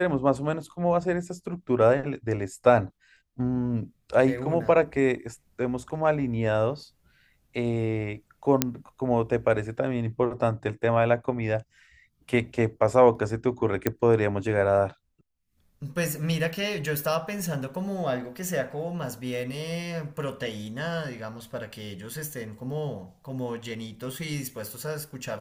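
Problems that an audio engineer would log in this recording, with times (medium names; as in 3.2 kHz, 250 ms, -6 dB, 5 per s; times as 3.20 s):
8.62 s: pop -3 dBFS
13.87 s: pop -9 dBFS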